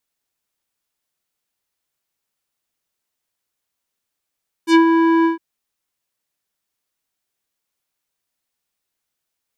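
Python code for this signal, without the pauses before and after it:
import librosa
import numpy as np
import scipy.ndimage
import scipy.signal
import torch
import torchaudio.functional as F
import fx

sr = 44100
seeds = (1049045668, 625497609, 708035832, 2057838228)

y = fx.sub_voice(sr, note=64, wave='square', cutoff_hz=1400.0, q=1.2, env_oct=3.5, env_s=0.11, attack_ms=78.0, decay_s=0.1, sustain_db=-5, release_s=0.13, note_s=0.58, slope=12)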